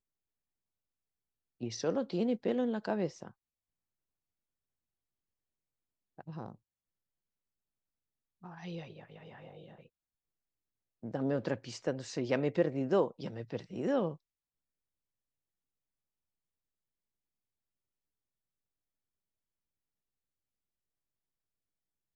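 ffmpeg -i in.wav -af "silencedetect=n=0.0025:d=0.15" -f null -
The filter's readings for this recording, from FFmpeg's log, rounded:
silence_start: 0.00
silence_end: 1.61 | silence_duration: 1.61
silence_start: 3.31
silence_end: 6.19 | silence_duration: 2.87
silence_start: 6.55
silence_end: 8.43 | silence_duration: 1.88
silence_start: 9.86
silence_end: 11.03 | silence_duration: 1.17
silence_start: 14.16
silence_end: 22.16 | silence_duration: 8.00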